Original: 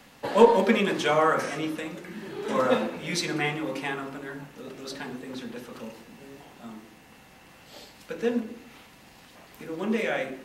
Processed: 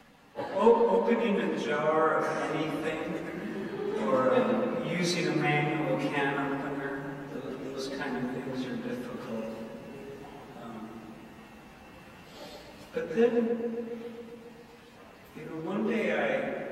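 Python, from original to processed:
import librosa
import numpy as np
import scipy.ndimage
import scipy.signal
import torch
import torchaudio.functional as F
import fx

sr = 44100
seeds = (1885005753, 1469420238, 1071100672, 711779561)

y = fx.high_shelf(x, sr, hz=2900.0, db=-8.0)
y = fx.rider(y, sr, range_db=5, speed_s=0.5)
y = fx.stretch_vocoder_free(y, sr, factor=1.6)
y = fx.echo_filtered(y, sr, ms=136, feedback_pct=74, hz=2900.0, wet_db=-7.0)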